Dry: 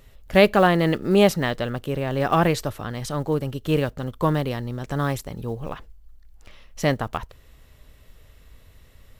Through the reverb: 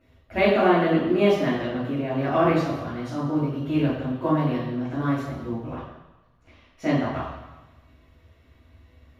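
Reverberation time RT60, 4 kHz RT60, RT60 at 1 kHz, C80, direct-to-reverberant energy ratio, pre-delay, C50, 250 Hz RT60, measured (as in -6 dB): 1.1 s, 1.1 s, 1.1 s, 4.0 dB, -10.5 dB, 3 ms, 1.0 dB, 0.95 s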